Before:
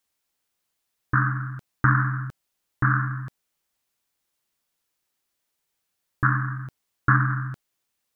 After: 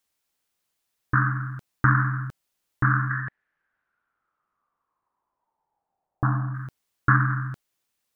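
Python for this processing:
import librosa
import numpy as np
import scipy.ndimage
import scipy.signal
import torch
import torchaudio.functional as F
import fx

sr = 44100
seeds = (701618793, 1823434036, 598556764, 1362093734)

y = fx.lowpass_res(x, sr, hz=fx.line((3.09, 1900.0), (6.53, 680.0)), q=8.4, at=(3.09, 6.53), fade=0.02)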